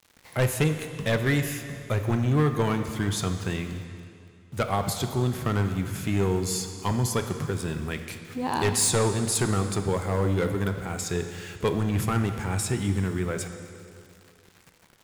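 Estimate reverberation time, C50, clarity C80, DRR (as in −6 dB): 2.5 s, 8.0 dB, 8.5 dB, 7.0 dB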